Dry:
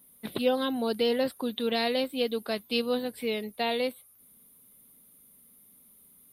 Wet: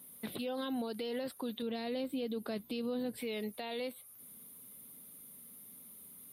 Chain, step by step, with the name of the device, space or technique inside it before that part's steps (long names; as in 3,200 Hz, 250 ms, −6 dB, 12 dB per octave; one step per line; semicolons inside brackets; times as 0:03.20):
0:01.62–0:03.17: low-shelf EQ 450 Hz +11 dB
podcast mastering chain (high-pass filter 76 Hz; downward compressor 2 to 1, threshold −40 dBFS, peak gain reduction 12 dB; brickwall limiter −34 dBFS, peak gain reduction 11 dB; level +4.5 dB; MP3 112 kbit/s 44,100 Hz)